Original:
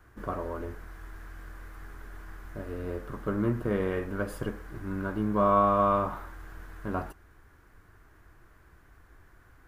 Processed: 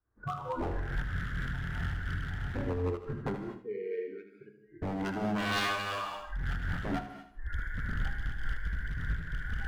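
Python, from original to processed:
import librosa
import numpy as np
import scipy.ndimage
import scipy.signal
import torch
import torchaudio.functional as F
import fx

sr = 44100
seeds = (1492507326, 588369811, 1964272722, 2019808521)

y = fx.wiener(x, sr, points=15)
y = fx.recorder_agc(y, sr, target_db=-17.0, rise_db_per_s=47.0, max_gain_db=30)
y = fx.noise_reduce_blind(y, sr, reduce_db=25)
y = fx.double_bandpass(y, sr, hz=1000.0, octaves=2.4, at=(3.34, 4.82))
y = 10.0 ** (-25.5 / 20.0) * (np.abs((y / 10.0 ** (-25.5 / 20.0) + 3.0) % 4.0 - 2.0) - 1.0)
y = fx.echo_feedback(y, sr, ms=77, feedback_pct=32, wet_db=-9.0)
y = fx.rev_gated(y, sr, seeds[0], gate_ms=270, shape='flat', drr_db=6.5)
y = fx.am_noise(y, sr, seeds[1], hz=5.7, depth_pct=60)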